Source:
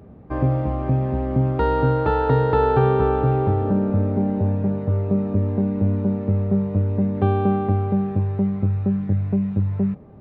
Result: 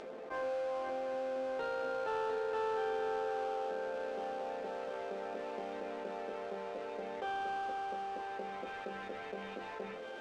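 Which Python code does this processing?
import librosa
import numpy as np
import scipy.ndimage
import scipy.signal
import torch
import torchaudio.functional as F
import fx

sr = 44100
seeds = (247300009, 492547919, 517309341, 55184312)

p1 = scipy.signal.sosfilt(scipy.signal.butter(4, 510.0, 'highpass', fs=sr, output='sos'), x)
p2 = fx.peak_eq(p1, sr, hz=930.0, db=-9.0, octaves=1.4)
p3 = fx.resonator_bank(p2, sr, root=53, chord='major', decay_s=0.23)
p4 = fx.sample_hold(p3, sr, seeds[0], rate_hz=2000.0, jitter_pct=20)
p5 = p3 + (p4 * librosa.db_to_amplitude(-10.0))
p6 = fx.air_absorb(p5, sr, metres=100.0)
p7 = p6 + fx.echo_wet_highpass(p6, sr, ms=700, feedback_pct=78, hz=1700.0, wet_db=-19.5, dry=0)
y = fx.env_flatten(p7, sr, amount_pct=70)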